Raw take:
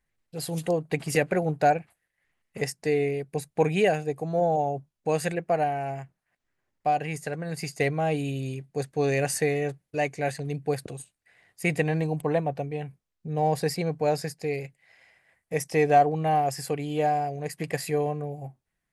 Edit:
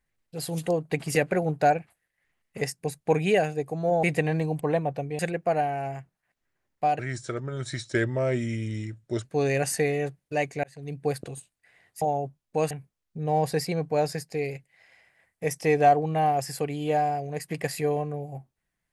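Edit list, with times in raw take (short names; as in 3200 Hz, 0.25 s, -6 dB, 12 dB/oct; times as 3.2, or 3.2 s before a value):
2.81–3.31 cut
4.53–5.22 swap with 11.64–12.8
7.02–8.87 speed 82%
10.26–10.68 fade in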